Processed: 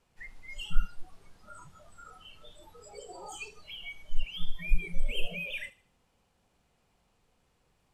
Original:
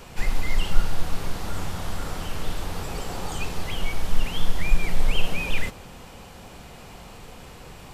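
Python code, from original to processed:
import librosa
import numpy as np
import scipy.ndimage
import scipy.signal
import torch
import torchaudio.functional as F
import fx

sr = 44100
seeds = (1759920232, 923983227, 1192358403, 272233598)

y = fx.cvsd(x, sr, bps=64000)
y = fx.noise_reduce_blind(y, sr, reduce_db=23)
y = fx.echo_wet_highpass(y, sr, ms=77, feedback_pct=33, hz=3000.0, wet_db=-14.5)
y = F.gain(torch.from_numpy(y), -5.5).numpy()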